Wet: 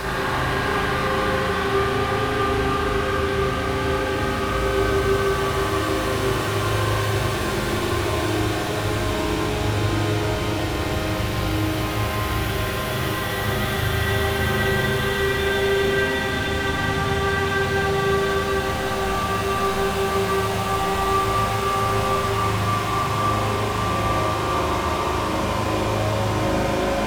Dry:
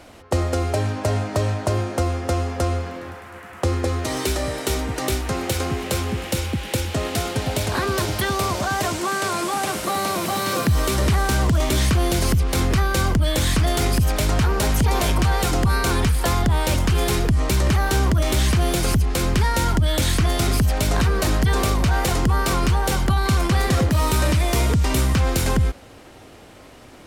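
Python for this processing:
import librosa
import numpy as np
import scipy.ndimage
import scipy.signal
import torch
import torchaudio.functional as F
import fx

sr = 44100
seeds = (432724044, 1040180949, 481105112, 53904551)

y = 10.0 ** (-28.0 / 20.0) * np.tanh(x / 10.0 ** (-28.0 / 20.0))
y = fx.paulstretch(y, sr, seeds[0], factor=33.0, window_s=0.25, from_s=7.79)
y = fx.rev_spring(y, sr, rt60_s=2.4, pass_ms=(38, 54), chirp_ms=65, drr_db=-7.5)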